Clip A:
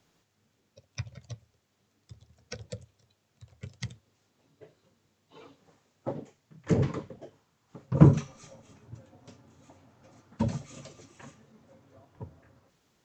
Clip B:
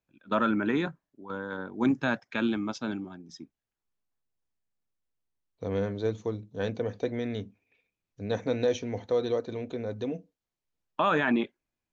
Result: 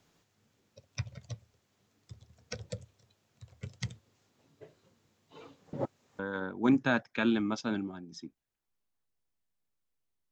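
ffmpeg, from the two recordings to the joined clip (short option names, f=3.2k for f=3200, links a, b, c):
-filter_complex "[0:a]apad=whole_dur=10.31,atrim=end=10.31,asplit=2[a][b];[a]atrim=end=5.732[c];[b]atrim=start=5.728:end=6.192,asetpts=PTS-STARTPTS,areverse[d];[1:a]atrim=start=1.358:end=5.48[e];[c][d]acrossfade=d=0.004:c1=hsin:c2=hsin[f];[f][e]acrossfade=d=0.004:c1=hsin:c2=hsin"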